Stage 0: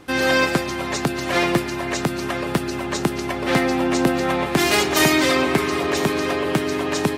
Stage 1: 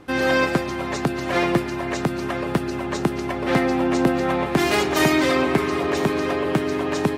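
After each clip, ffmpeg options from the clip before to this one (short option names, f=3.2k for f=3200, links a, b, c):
-af "highshelf=f=2.6k:g=-8"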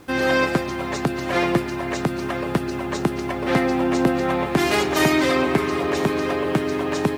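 -af "acrusher=bits=8:mix=0:aa=0.000001"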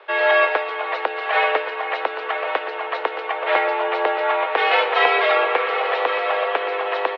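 -af "aecho=1:1:1121:0.251,highpass=f=440:t=q:w=0.5412,highpass=f=440:t=q:w=1.307,lowpass=f=3.4k:t=q:w=0.5176,lowpass=f=3.4k:t=q:w=0.7071,lowpass=f=3.4k:t=q:w=1.932,afreqshift=89,volume=4.5dB"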